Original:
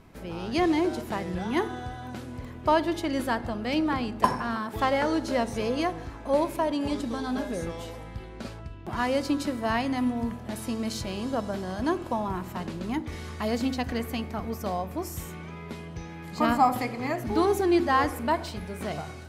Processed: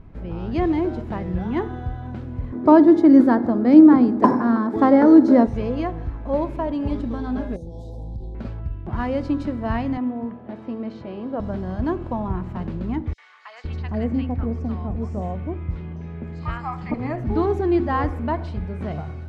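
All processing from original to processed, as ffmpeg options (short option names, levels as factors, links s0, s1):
-filter_complex "[0:a]asettb=1/sr,asplit=3[s0][s1][s2];[s0]atrim=end=2.524[s3];[s1]atrim=start=2.52:end=5.47,asetpts=PTS-STARTPTS,afade=t=in:d=0.004:c=qsin,afade=t=out:st=2.946:d=0.004:c=qsin,equalizer=f=2800:t=o:w=0.51:g=-14,acontrast=34,highpass=f=280:t=q:w=3.2[s4];[s2]atrim=start=5.466[s5];[s3][s4]acrossfade=d=0.004:c1=hsin:c2=qsin[s6];[s6][s5]acrossfade=d=0.004:c1=qsin:c2=hsin,asettb=1/sr,asplit=3[s7][s8][s9];[s7]atrim=end=7.564[s10];[s8]atrim=start=7.56:end=8.35,asetpts=PTS-STARTPTS,afade=t=in:d=0.004:c=qsin,afade=t=out:st=0.786:d=0.004:c=qsin,aemphasis=mode=production:type=50kf,acompressor=threshold=0.0158:ratio=12:attack=3.2:release=140:knee=1:detection=peak,asuperstop=centerf=1800:order=12:qfactor=0.66[s11];[s9]atrim=start=8.346[s12];[s10][s11]acrossfade=d=0.004:c1=hsin:c2=qsin[s13];[s13][s12]acrossfade=d=0.004:c1=qsin:c2=hsin,asettb=1/sr,asplit=3[s14][s15][s16];[s14]atrim=end=9.974[s17];[s15]atrim=start=9.97:end=11.4,asetpts=PTS-STARTPTS,afade=t=in:d=0.004:c=qsin,afade=t=out:st=1.426:d=0.004:c=qsin,highpass=330,lowpass=3800,tiltshelf=f=740:g=4[s18];[s16]atrim=start=11.396[s19];[s17][s18]acrossfade=d=0.004:c1=hsin:c2=qsin[s20];[s20][s19]acrossfade=d=0.004:c1=qsin:c2=hsin,asettb=1/sr,asplit=3[s21][s22][s23];[s21]atrim=end=13.134[s24];[s22]atrim=start=13.13:end=16.94,asetpts=PTS-STARTPTS,afade=t=in:d=0.004:c=qsin,afade=t=out:st=3.806:d=0.004:c=qsin,lowpass=f=8200:w=0.5412,lowpass=f=8200:w=1.3066,acrossover=split=1000|4600[s25][s26][s27];[s26]adelay=50[s28];[s25]adelay=510[s29];[s29][s28][s27]amix=inputs=3:normalize=0,atrim=end_sample=168021[s30];[s23]atrim=start=16.936[s31];[s24][s30]acrossfade=d=0.004:c1=hsin:c2=qsin[s32];[s32][s31]acrossfade=d=0.004:c1=qsin:c2=hsin,lowpass=f=2400:p=1,aemphasis=mode=reproduction:type=bsi"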